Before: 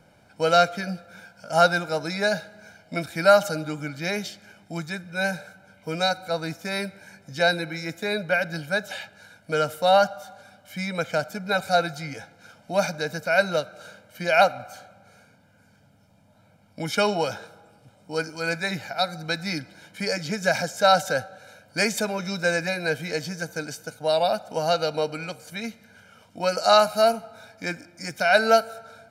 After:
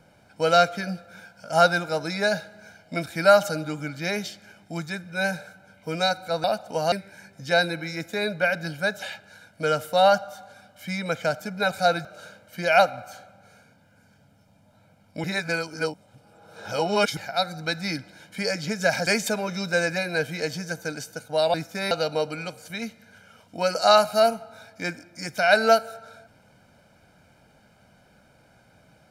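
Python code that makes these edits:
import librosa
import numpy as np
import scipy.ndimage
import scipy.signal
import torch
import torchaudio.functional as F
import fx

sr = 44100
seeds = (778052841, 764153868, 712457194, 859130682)

y = fx.edit(x, sr, fx.swap(start_s=6.44, length_s=0.37, other_s=24.25, other_length_s=0.48),
    fx.cut(start_s=11.94, length_s=1.73),
    fx.reverse_span(start_s=16.86, length_s=1.93),
    fx.cut(start_s=20.69, length_s=1.09), tone=tone)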